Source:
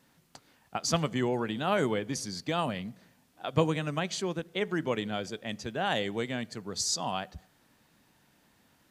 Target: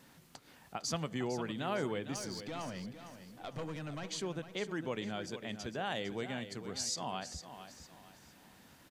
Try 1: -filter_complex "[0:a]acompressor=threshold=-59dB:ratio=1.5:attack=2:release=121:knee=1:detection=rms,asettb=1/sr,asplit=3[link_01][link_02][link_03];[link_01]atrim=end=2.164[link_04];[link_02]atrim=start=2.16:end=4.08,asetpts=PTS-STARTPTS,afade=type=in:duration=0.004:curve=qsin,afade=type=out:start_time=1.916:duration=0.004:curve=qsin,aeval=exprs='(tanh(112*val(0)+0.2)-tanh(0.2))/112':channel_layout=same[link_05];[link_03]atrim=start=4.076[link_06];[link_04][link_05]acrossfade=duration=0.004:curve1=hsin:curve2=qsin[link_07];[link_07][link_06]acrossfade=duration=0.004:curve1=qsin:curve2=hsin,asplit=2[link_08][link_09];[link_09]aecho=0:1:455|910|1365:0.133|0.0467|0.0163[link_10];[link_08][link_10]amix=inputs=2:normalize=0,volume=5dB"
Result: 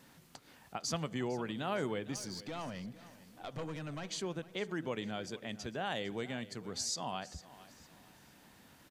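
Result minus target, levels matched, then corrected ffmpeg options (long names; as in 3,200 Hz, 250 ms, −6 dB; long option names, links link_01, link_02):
echo-to-direct −6.5 dB
-filter_complex "[0:a]acompressor=threshold=-59dB:ratio=1.5:attack=2:release=121:knee=1:detection=rms,asettb=1/sr,asplit=3[link_01][link_02][link_03];[link_01]atrim=end=2.164[link_04];[link_02]atrim=start=2.16:end=4.08,asetpts=PTS-STARTPTS,afade=type=in:duration=0.004:curve=qsin,afade=type=out:start_time=1.916:duration=0.004:curve=qsin,aeval=exprs='(tanh(112*val(0)+0.2)-tanh(0.2))/112':channel_layout=same[link_05];[link_03]atrim=start=4.076[link_06];[link_04][link_05]acrossfade=duration=0.004:curve1=hsin:curve2=qsin[link_07];[link_07][link_06]acrossfade=duration=0.004:curve1=qsin:curve2=hsin,asplit=2[link_08][link_09];[link_09]aecho=0:1:455|910|1365|1820:0.282|0.0986|0.0345|0.0121[link_10];[link_08][link_10]amix=inputs=2:normalize=0,volume=5dB"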